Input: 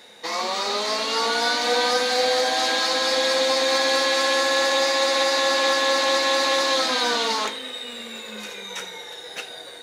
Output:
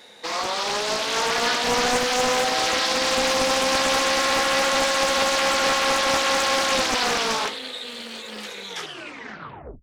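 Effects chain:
turntable brake at the end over 1.15 s
highs frequency-modulated by the lows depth 0.62 ms

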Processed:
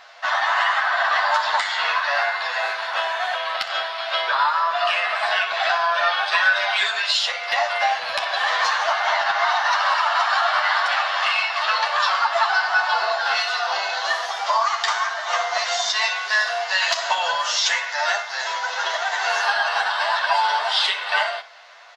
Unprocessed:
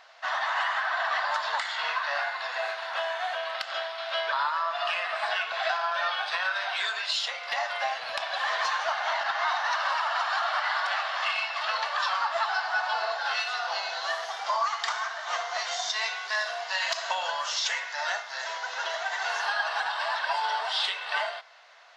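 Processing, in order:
0:06.31–0:06.84: comb filter 4.8 ms, depth 68%
on a send: ambience of single reflections 10 ms −4 dB, 62 ms −14.5 dB
on the sum: level +6.5 dB

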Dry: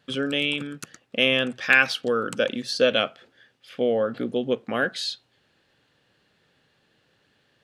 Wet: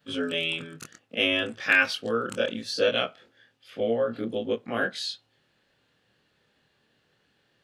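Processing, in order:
every overlapping window played backwards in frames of 52 ms

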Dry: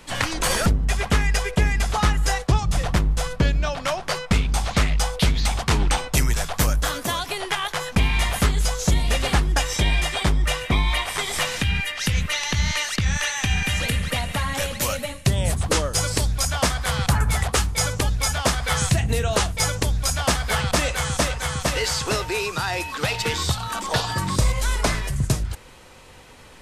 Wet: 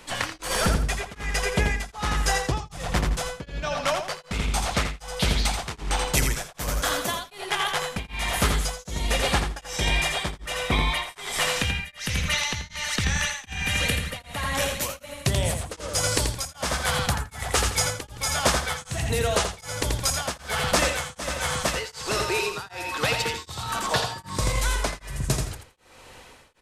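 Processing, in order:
bass and treble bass −5 dB, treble 0 dB
repeating echo 84 ms, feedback 31%, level −5.5 dB
tremolo along a rectified sine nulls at 1.3 Hz

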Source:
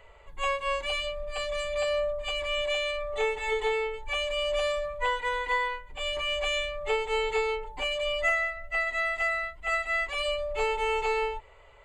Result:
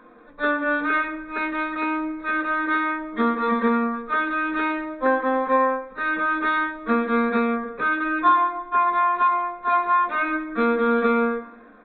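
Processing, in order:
pitch shifter −11 semitones
convolution reverb RT60 1.0 s, pre-delay 3 ms, DRR 5.5 dB
downsampling to 8,000 Hz
level +9 dB

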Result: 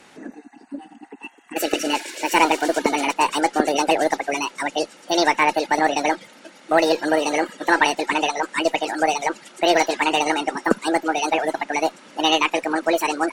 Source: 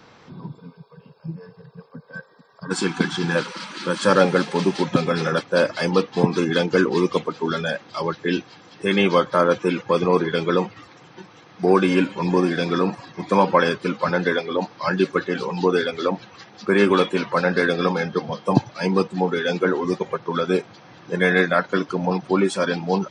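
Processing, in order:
wrong playback speed 45 rpm record played at 78 rpm
harmonic generator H 4 −30 dB, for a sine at −1.5 dBFS

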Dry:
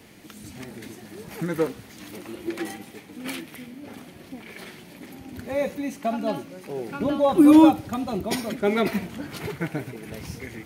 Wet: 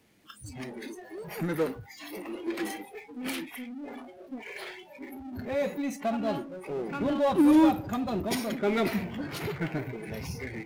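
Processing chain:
noise reduction from a noise print of the clip's start 27 dB
power curve on the samples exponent 0.7
level −8.5 dB

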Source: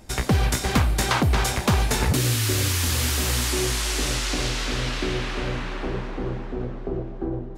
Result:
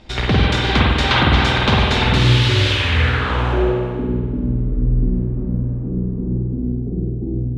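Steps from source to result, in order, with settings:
low-pass filter sweep 3,600 Hz → 220 Hz, 0:02.69–0:04.15
echo through a band-pass that steps 201 ms, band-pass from 450 Hz, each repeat 1.4 octaves, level −7 dB
spring reverb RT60 1.4 s, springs 49 ms, chirp 60 ms, DRR −3 dB
level +1.5 dB

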